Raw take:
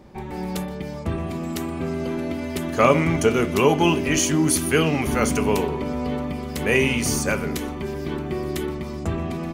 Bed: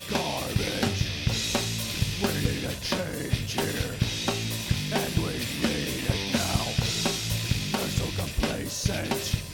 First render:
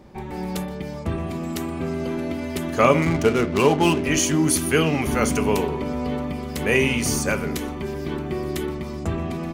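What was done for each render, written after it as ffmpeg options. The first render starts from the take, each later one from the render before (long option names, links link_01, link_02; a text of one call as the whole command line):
ffmpeg -i in.wav -filter_complex "[0:a]asettb=1/sr,asplit=3[link_01][link_02][link_03];[link_01]atrim=end=3.024[link_04];[link_02]atrim=start=3.02:end=4.04,asetpts=PTS-STARTPTS,afade=type=in:duration=0.004:curve=qsin,afade=type=out:start_time=1.016:duration=0.004:curve=qsin,adynamicsmooth=sensitivity=5:basefreq=630[link_05];[link_03]atrim=start=4.036[link_06];[link_04][link_05]acrossfade=duration=0.004:curve1=hsin:curve2=qsin[link_07];[link_07][link_06]acrossfade=duration=0.004:curve1=qsin:curve2=hsin" out.wav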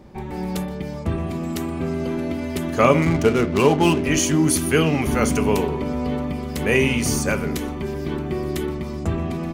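ffmpeg -i in.wav -af "lowshelf=frequency=360:gain=3" out.wav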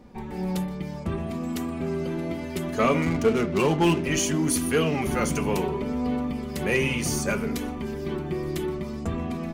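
ffmpeg -i in.wav -af "flanger=delay=4.1:depth=1.8:regen=41:speed=0.65:shape=sinusoidal,asoftclip=type=tanh:threshold=-12.5dB" out.wav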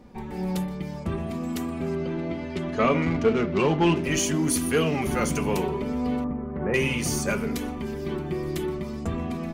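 ffmpeg -i in.wav -filter_complex "[0:a]asettb=1/sr,asplit=3[link_01][link_02][link_03];[link_01]atrim=end=1.954[link_04];[link_02]atrim=start=1.95:end=3.96,asetpts=PTS-STARTPTS,afade=type=in:duration=0.004:curve=qsin,afade=type=out:start_time=2.006:duration=0.004:curve=qsin,lowpass=4400[link_05];[link_03]atrim=start=3.956[link_06];[link_04][link_05]acrossfade=duration=0.004:curve1=hsin:curve2=qsin[link_07];[link_07][link_06]acrossfade=duration=0.004:curve1=qsin:curve2=hsin,asettb=1/sr,asplit=3[link_08][link_09][link_10];[link_08]atrim=end=6.244[link_11];[link_09]atrim=start=6.24:end=6.74,asetpts=PTS-STARTPTS,afade=type=in:duration=0.004:curve=qsin,afade=type=out:start_time=0.496:duration=0.004:curve=qsin,lowpass=frequency=1500:width=0.5412,lowpass=frequency=1500:width=1.3066[link_12];[link_10]atrim=start=6.736[link_13];[link_11][link_12]acrossfade=duration=0.004:curve1=hsin:curve2=qsin[link_14];[link_14][link_13]acrossfade=duration=0.004:curve1=qsin:curve2=hsin" out.wav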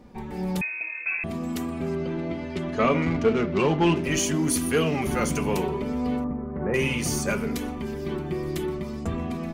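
ffmpeg -i in.wav -filter_complex "[0:a]asettb=1/sr,asplit=3[link_01][link_02][link_03];[link_01]atrim=end=0.614[link_04];[link_02]atrim=start=0.61:end=1.24,asetpts=PTS-STARTPTS,afade=type=in:duration=0.004:curve=qsin,afade=type=out:start_time=0.626:duration=0.004:curve=qsin,lowpass=frequency=2300:width_type=q:width=0.5098,lowpass=frequency=2300:width_type=q:width=0.6013,lowpass=frequency=2300:width_type=q:width=0.9,lowpass=frequency=2300:width_type=q:width=2.563,afreqshift=-2700[link_05];[link_03]atrim=start=1.236[link_06];[link_04][link_05]acrossfade=duration=0.004:curve1=hsin:curve2=qsin[link_07];[link_07][link_06]acrossfade=duration=0.004:curve1=qsin:curve2=hsin,asettb=1/sr,asplit=3[link_08][link_09][link_10];[link_08]atrim=end=6.184[link_11];[link_09]atrim=start=6.18:end=6.79,asetpts=PTS-STARTPTS,afade=type=in:duration=0.004:curve=qsin,afade=type=out:start_time=0.606:duration=0.004:curve=qsin,equalizer=frequency=3600:width=0.99:gain=-6.5[link_12];[link_10]atrim=start=6.786[link_13];[link_11][link_12]acrossfade=duration=0.004:curve1=hsin:curve2=qsin[link_14];[link_14][link_13]acrossfade=duration=0.004:curve1=qsin:curve2=hsin" out.wav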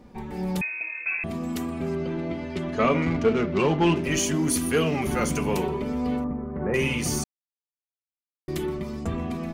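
ffmpeg -i in.wav -filter_complex "[0:a]asplit=3[link_01][link_02][link_03];[link_01]atrim=end=7.24,asetpts=PTS-STARTPTS,afade=type=out:start_time=7.236:duration=0.004:curve=hsin[link_04];[link_02]atrim=start=7.24:end=8.48,asetpts=PTS-STARTPTS,volume=0[link_05];[link_03]atrim=start=8.48,asetpts=PTS-STARTPTS,afade=type=in:duration=0.004:curve=hsin[link_06];[link_04][link_05][link_06]concat=n=3:v=0:a=1" out.wav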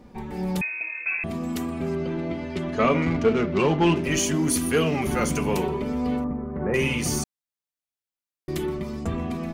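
ffmpeg -i in.wav -af "volume=1dB" out.wav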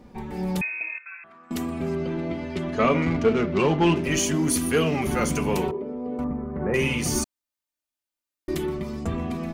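ffmpeg -i in.wav -filter_complex "[0:a]asettb=1/sr,asplit=3[link_01][link_02][link_03];[link_01]atrim=end=0.984[link_04];[link_02]atrim=start=0.98:end=1.51,asetpts=PTS-STARTPTS,afade=type=in:duration=0.004:curve=qsin,afade=type=out:start_time=0.526:duration=0.004:curve=qsin,bandpass=frequency=1400:width_type=q:width=4.8[link_05];[link_03]atrim=start=1.506[link_06];[link_04][link_05]acrossfade=duration=0.004:curve1=hsin:curve2=qsin[link_07];[link_07][link_06]acrossfade=duration=0.004:curve1=qsin:curve2=hsin,asettb=1/sr,asplit=3[link_08][link_09][link_10];[link_08]atrim=end=5.714[link_11];[link_09]atrim=start=5.71:end=6.19,asetpts=PTS-STARTPTS,afade=type=in:duration=0.004:curve=qsin,afade=type=out:start_time=0.476:duration=0.004:curve=qsin,bandpass=frequency=430:width_type=q:width=1.6[link_12];[link_10]atrim=start=6.186[link_13];[link_11][link_12]acrossfade=duration=0.004:curve1=hsin:curve2=qsin[link_14];[link_14][link_13]acrossfade=duration=0.004:curve1=qsin:curve2=hsin,asettb=1/sr,asplit=3[link_15][link_16][link_17];[link_15]atrim=end=7.154[link_18];[link_16]atrim=start=7.15:end=8.55,asetpts=PTS-STARTPTS,afade=type=in:duration=0.004:curve=qsin,afade=type=out:start_time=1.396:duration=0.004:curve=qsin,aecho=1:1:3.3:0.9,atrim=end_sample=61740[link_19];[link_17]atrim=start=8.546[link_20];[link_18][link_19]acrossfade=duration=0.004:curve1=hsin:curve2=qsin[link_21];[link_21][link_20]acrossfade=duration=0.004:curve1=qsin:curve2=hsin" out.wav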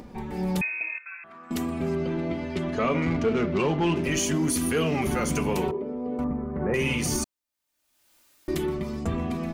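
ffmpeg -i in.wav -af "alimiter=limit=-17dB:level=0:latency=1:release=78,acompressor=mode=upward:threshold=-38dB:ratio=2.5" out.wav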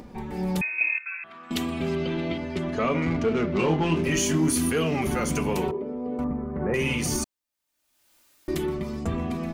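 ffmpeg -i in.wav -filter_complex "[0:a]asettb=1/sr,asplit=3[link_01][link_02][link_03];[link_01]atrim=end=0.784[link_04];[link_02]atrim=start=0.78:end=2.38,asetpts=PTS-STARTPTS,afade=type=in:duration=0.004:curve=qsin,afade=type=out:start_time=1.596:duration=0.004:curve=qsin,equalizer=frequency=3300:width=1.2:gain=11[link_05];[link_03]atrim=start=2.376[link_06];[link_04][link_05]acrossfade=duration=0.004:curve1=hsin:curve2=qsin[link_07];[link_07][link_06]acrossfade=duration=0.004:curve1=qsin:curve2=hsin,asettb=1/sr,asplit=3[link_08][link_09][link_10];[link_08]atrim=end=3.534[link_11];[link_09]atrim=start=3.53:end=4.7,asetpts=PTS-STARTPTS,afade=type=in:duration=0.004:curve=qsin,afade=type=out:start_time=1.166:duration=0.004:curve=qsin,asplit=2[link_12][link_13];[link_13]adelay=25,volume=-5dB[link_14];[link_12][link_14]amix=inputs=2:normalize=0,atrim=end_sample=51597[link_15];[link_10]atrim=start=4.696[link_16];[link_11][link_15]acrossfade=duration=0.004:curve1=hsin:curve2=qsin[link_17];[link_17][link_16]acrossfade=duration=0.004:curve1=qsin:curve2=hsin" out.wav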